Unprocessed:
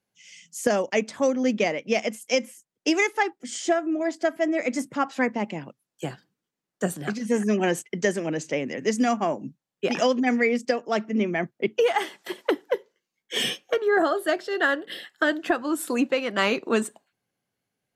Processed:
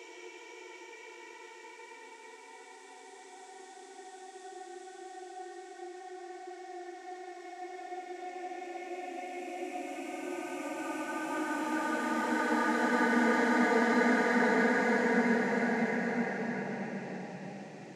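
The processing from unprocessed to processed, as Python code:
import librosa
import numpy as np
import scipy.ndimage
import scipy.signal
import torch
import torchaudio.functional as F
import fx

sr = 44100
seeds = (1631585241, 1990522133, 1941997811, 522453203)

y = fx.doppler_pass(x, sr, speed_mps=36, closest_m=3.1, pass_at_s=4.62)
y = fx.paulstretch(y, sr, seeds[0], factor=6.9, window_s=1.0, from_s=2.62)
y = fx.dmg_noise_band(y, sr, seeds[1], low_hz=1100.0, high_hz=7300.0, level_db=-67.0)
y = y * 10.0 ** (2.5 / 20.0)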